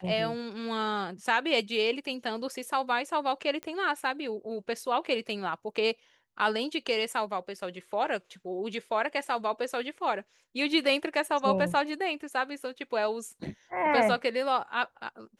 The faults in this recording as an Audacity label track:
3.630000	3.630000	pop -23 dBFS

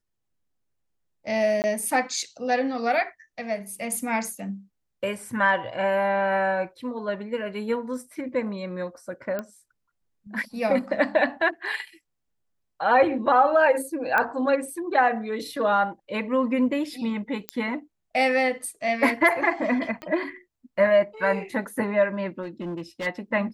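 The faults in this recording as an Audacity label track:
1.620000	1.640000	gap 19 ms
9.390000	9.390000	pop -17 dBFS
14.180000	14.180000	pop -11 dBFS
17.490000	17.490000	pop -12 dBFS
20.020000	20.020000	pop -22 dBFS
22.420000	23.070000	clipped -27.5 dBFS

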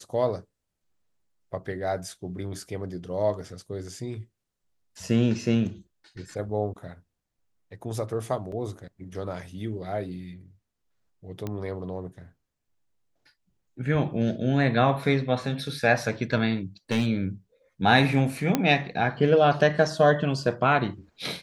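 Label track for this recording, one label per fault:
8.520000	8.520000	gap 2.6 ms
11.470000	11.470000	pop -19 dBFS
16.910000	17.070000	clipped -18.5 dBFS
18.550000	18.550000	pop -8 dBFS

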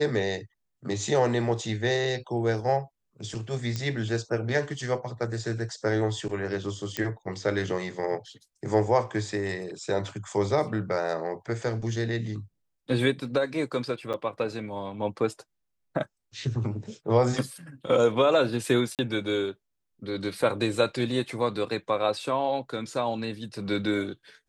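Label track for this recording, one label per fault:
3.760000	3.760000	pop -17 dBFS
6.970000	6.970000	pop -12 dBFS
14.130000	14.140000	gap 7.9 ms
18.950000	18.990000	gap 38 ms

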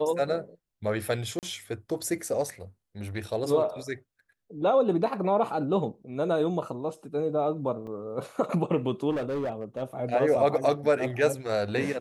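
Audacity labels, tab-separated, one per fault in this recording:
1.390000	1.430000	gap 38 ms
7.870000	7.870000	gap 3 ms
9.100000	9.830000	clipped -26.5 dBFS

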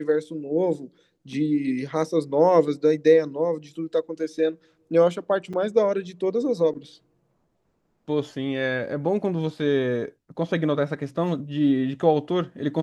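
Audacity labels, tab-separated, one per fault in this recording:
5.530000	5.540000	gap 5.4 ms

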